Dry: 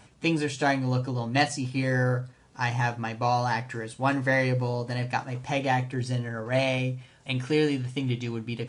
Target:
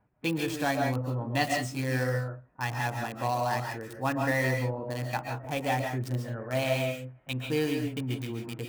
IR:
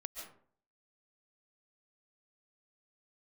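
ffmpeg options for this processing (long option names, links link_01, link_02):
-filter_complex "[0:a]acrossover=split=470|1800[link_01][link_02][link_03];[link_03]acrusher=bits=5:mix=0:aa=0.000001[link_04];[link_01][link_02][link_04]amix=inputs=3:normalize=0,agate=range=-11dB:threshold=-49dB:ratio=16:detection=peak[link_05];[1:a]atrim=start_sample=2205,afade=type=out:start_time=0.24:duration=0.01,atrim=end_sample=11025[link_06];[link_05][link_06]afir=irnorm=-1:irlink=0"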